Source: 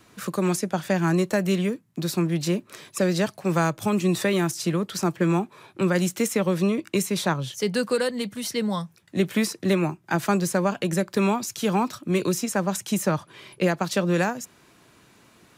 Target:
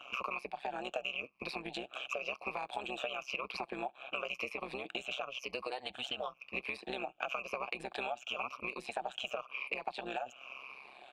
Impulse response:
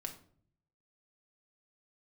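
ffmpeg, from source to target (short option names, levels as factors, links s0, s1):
-filter_complex "[0:a]afftfilt=real='re*pow(10,14/40*sin(2*PI*(0.87*log(max(b,1)*sr/1024/100)/log(2)-(-0.69)*(pts-256)/sr)))':imag='im*pow(10,14/40*sin(2*PI*(0.87*log(max(b,1)*sr/1024/100)/log(2)-(-0.69)*(pts-256)/sr)))':win_size=1024:overlap=0.75,equalizer=f=2700:t=o:w=0.78:g=14,acrossover=split=180|4900[s0][s1][s2];[s0]acompressor=threshold=0.0141:ratio=4[s3];[s1]acompressor=threshold=0.0794:ratio=4[s4];[s2]acompressor=threshold=0.0251:ratio=4[s5];[s3][s4][s5]amix=inputs=3:normalize=0,highpass=f=44:p=1,agate=range=0.0224:threshold=0.00282:ratio=3:detection=peak,aeval=exprs='clip(val(0),-1,0.211)':c=same,asplit=3[s6][s7][s8];[s6]bandpass=f=730:t=q:w=8,volume=1[s9];[s7]bandpass=f=1090:t=q:w=8,volume=0.501[s10];[s8]bandpass=f=2440:t=q:w=8,volume=0.355[s11];[s9][s10][s11]amix=inputs=3:normalize=0,tremolo=f=130:d=0.889,acompressor=threshold=0.00282:ratio=4,lowshelf=f=330:g=-4,atempo=1.4,volume=5.31"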